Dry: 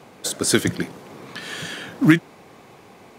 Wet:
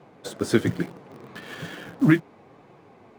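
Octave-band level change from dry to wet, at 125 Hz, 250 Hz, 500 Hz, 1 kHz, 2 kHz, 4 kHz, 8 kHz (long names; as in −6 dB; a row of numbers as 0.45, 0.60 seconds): −1.5 dB, −2.5 dB, −1.5 dB, −4.0 dB, −6.0 dB, −11.0 dB, below −15 dB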